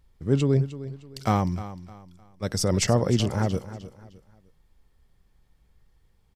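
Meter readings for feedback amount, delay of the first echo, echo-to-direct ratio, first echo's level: 33%, 306 ms, −14.0 dB, −14.5 dB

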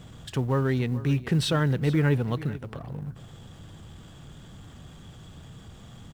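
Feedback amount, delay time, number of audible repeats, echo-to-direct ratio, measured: repeats not evenly spaced, 432 ms, 1, −17.0 dB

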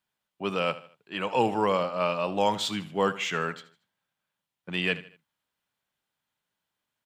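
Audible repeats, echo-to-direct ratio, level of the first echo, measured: 3, −15.5 dB, −16.0 dB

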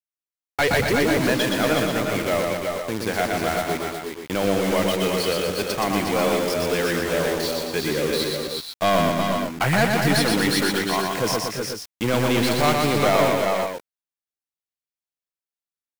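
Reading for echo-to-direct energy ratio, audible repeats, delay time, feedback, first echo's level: 0.5 dB, 4, 121 ms, repeats not evenly spaced, −3.5 dB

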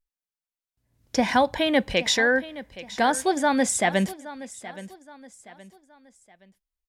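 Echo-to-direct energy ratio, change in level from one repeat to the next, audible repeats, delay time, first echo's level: −16.0 dB, −8.5 dB, 3, 821 ms, −16.5 dB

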